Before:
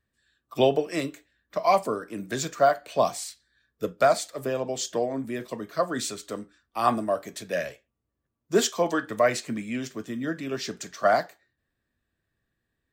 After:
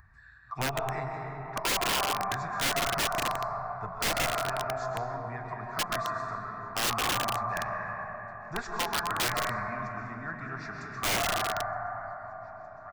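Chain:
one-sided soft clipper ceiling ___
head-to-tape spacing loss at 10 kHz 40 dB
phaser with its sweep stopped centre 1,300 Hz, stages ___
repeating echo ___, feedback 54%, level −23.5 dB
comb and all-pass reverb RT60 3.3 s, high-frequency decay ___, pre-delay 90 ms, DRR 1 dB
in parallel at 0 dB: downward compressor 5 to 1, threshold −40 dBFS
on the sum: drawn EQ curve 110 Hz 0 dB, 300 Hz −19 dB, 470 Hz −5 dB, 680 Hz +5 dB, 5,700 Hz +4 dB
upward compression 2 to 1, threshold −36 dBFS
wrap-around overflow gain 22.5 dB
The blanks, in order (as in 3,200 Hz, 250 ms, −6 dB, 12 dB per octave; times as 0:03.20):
−14.5 dBFS, 4, 915 ms, 0.45×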